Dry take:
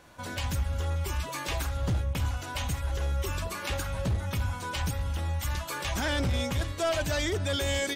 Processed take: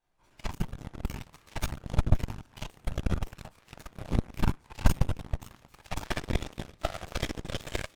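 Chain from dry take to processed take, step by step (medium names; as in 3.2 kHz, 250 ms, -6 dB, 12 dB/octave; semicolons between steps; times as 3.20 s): half-wave rectifier; whisper effect; on a send: delay 133 ms -13 dB; on the sum: simulated room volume 200 m³, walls furnished, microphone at 3.9 m; Chebyshev shaper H 3 -9 dB, 5 -44 dB, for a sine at -4 dBFS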